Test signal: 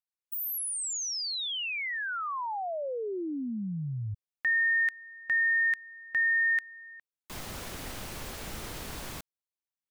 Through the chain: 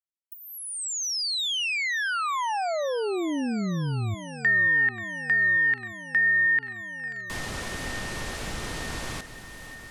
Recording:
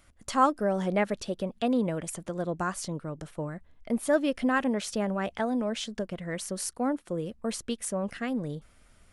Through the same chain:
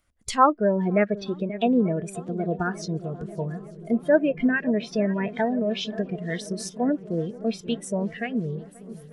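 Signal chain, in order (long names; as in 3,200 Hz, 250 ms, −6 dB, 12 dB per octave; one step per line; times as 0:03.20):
feedback echo with a long and a short gap by turns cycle 891 ms, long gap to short 1.5 to 1, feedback 66%, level −14.5 dB
treble cut that deepens with the level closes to 2,200 Hz, closed at −23.5 dBFS
noise reduction from a noise print of the clip's start 17 dB
level +6 dB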